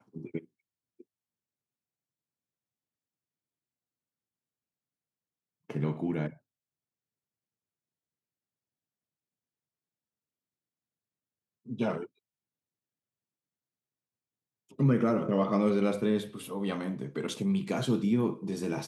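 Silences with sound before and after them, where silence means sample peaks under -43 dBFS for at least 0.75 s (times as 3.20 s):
1.01–5.70 s
6.33–11.68 s
12.06–14.79 s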